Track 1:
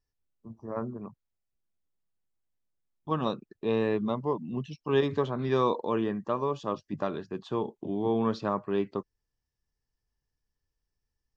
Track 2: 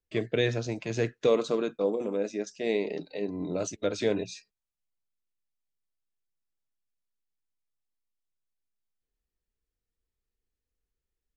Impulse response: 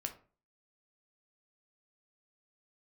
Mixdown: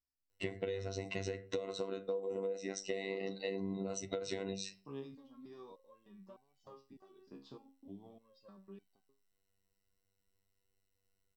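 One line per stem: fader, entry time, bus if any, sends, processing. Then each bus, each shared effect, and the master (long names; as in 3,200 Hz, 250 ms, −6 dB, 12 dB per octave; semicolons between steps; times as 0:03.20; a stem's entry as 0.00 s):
−7.0 dB, 0.00 s, no send, thirty-one-band graphic EQ 250 Hz +9 dB, 1,600 Hz −5 dB, 5,000 Hz +12 dB; downward compressor 12 to 1, threshold −31 dBFS, peak gain reduction 14 dB; step-sequenced resonator 3.3 Hz 68–760 Hz
+2.0 dB, 0.30 s, send −3.5 dB, EQ curve with evenly spaced ripples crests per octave 2, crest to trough 14 dB; downward compressor, threshold −29 dBFS, peak gain reduction 14 dB; phases set to zero 97.1 Hz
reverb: on, RT60 0.40 s, pre-delay 8 ms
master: downward compressor 8 to 1, threshold −35 dBFS, peak gain reduction 13.5 dB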